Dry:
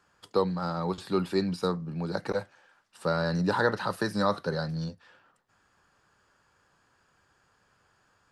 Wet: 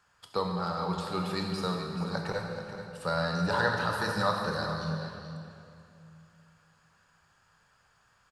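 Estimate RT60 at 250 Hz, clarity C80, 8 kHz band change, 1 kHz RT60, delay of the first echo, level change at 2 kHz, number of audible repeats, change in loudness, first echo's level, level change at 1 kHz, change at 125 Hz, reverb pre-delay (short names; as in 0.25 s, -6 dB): 3.0 s, 3.0 dB, +2.0 dB, 2.5 s, 0.432 s, +2.0 dB, 1, -2.0 dB, -10.5 dB, +1.0 dB, -1.0 dB, 20 ms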